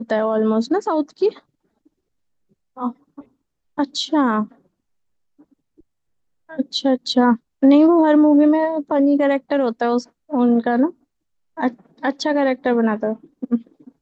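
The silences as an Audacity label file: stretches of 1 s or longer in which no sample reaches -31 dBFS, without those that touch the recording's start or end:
1.360000	2.770000	silence
4.460000	6.500000	silence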